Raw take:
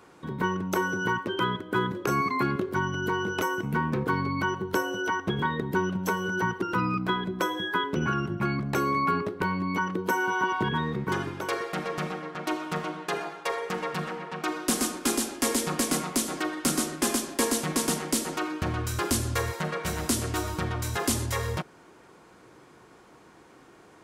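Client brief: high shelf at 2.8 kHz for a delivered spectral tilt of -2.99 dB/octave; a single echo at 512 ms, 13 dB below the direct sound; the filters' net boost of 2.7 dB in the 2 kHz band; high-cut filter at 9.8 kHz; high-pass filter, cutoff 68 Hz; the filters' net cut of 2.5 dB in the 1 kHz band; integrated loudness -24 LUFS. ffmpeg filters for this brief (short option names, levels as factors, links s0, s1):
-af "highpass=68,lowpass=9800,equalizer=f=1000:t=o:g=-5,equalizer=f=2000:t=o:g=4,highshelf=f=2800:g=6.5,aecho=1:1:512:0.224,volume=1.41"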